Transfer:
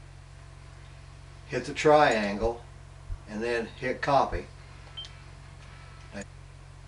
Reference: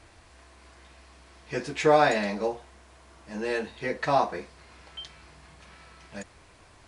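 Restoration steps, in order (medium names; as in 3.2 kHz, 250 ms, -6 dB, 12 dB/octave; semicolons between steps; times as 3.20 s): de-hum 45.2 Hz, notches 3; de-plosive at 2.41/3.08/4.31 s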